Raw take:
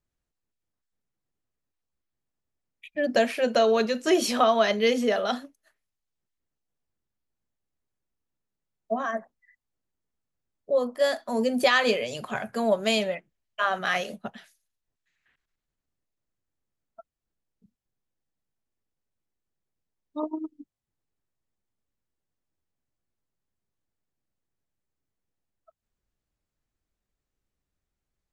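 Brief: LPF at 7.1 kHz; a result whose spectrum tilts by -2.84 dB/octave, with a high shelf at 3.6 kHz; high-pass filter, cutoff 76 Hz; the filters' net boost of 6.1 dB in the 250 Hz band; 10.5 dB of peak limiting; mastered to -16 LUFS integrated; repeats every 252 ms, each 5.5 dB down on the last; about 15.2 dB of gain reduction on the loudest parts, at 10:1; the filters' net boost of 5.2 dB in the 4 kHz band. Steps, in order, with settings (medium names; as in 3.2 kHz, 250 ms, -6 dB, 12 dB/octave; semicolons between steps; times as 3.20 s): high-pass 76 Hz; low-pass 7.1 kHz; peaking EQ 250 Hz +7 dB; treble shelf 3.6 kHz +6.5 dB; peaking EQ 4 kHz +3 dB; compression 10:1, threshold -30 dBFS; peak limiter -28.5 dBFS; feedback delay 252 ms, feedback 53%, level -5.5 dB; trim +21.5 dB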